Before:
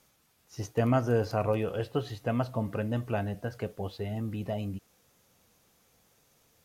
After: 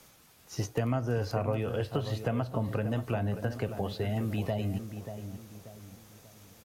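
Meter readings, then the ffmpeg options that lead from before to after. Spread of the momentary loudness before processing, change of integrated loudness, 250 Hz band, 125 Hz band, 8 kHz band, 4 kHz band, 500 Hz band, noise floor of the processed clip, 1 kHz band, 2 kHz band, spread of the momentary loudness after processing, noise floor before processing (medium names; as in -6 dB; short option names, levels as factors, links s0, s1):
10 LU, -1.0 dB, -1.0 dB, +1.0 dB, no reading, +2.0 dB, -2.0 dB, -59 dBFS, -2.5 dB, -0.5 dB, 16 LU, -68 dBFS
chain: -filter_complex "[0:a]acrossover=split=120|840[s0][s1][s2];[s0]acompressor=threshold=0.00562:ratio=4[s3];[s1]acompressor=threshold=0.00794:ratio=4[s4];[s2]acompressor=threshold=0.00282:ratio=4[s5];[s3][s4][s5]amix=inputs=3:normalize=0,asplit=2[s6][s7];[s7]adelay=586,lowpass=f=1500:p=1,volume=0.355,asplit=2[s8][s9];[s9]adelay=586,lowpass=f=1500:p=1,volume=0.4,asplit=2[s10][s11];[s11]adelay=586,lowpass=f=1500:p=1,volume=0.4,asplit=2[s12][s13];[s13]adelay=586,lowpass=f=1500:p=1,volume=0.4[s14];[s8][s10][s12][s14]amix=inputs=4:normalize=0[s15];[s6][s15]amix=inputs=2:normalize=0,volume=2.82"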